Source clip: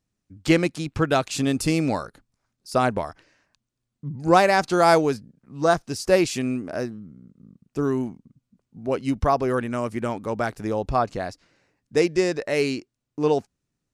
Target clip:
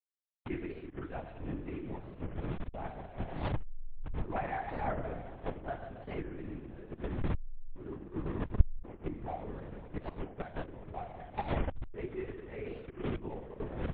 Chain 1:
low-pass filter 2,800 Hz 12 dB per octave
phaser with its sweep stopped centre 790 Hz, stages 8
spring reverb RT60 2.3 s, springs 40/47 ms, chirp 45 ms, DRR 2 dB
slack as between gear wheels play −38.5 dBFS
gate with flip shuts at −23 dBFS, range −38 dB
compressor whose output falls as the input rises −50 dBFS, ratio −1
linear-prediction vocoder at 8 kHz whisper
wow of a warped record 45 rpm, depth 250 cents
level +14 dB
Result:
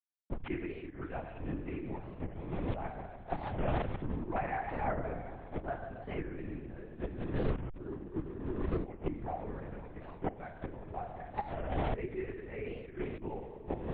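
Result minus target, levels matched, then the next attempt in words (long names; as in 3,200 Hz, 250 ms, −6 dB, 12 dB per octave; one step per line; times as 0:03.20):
slack as between gear wheels: distortion −9 dB
low-pass filter 2,800 Hz 12 dB per octave
phaser with its sweep stopped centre 790 Hz, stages 8
spring reverb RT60 2.3 s, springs 40/47 ms, chirp 45 ms, DRR 2 dB
slack as between gear wheels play −28 dBFS
gate with flip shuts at −23 dBFS, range −38 dB
compressor whose output falls as the input rises −50 dBFS, ratio −1
linear-prediction vocoder at 8 kHz whisper
wow of a warped record 45 rpm, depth 250 cents
level +14 dB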